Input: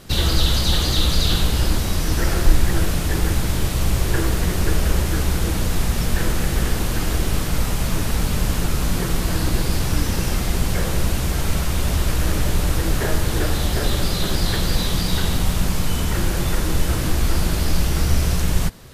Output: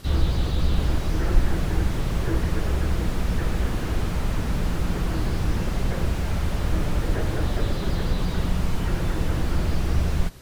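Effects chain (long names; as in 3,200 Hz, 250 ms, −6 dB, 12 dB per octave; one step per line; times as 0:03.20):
time stretch by phase vocoder 0.55×
slew-rate limiting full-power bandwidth 43 Hz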